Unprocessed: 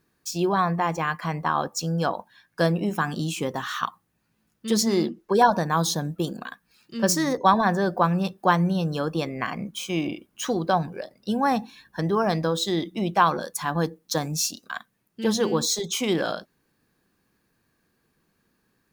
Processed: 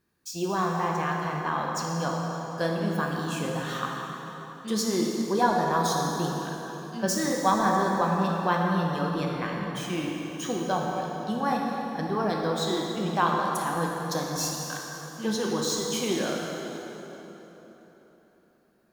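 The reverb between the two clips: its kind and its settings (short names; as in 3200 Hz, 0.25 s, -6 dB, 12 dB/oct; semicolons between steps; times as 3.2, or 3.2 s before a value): plate-style reverb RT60 3.9 s, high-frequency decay 0.7×, DRR -1.5 dB; gain -6.5 dB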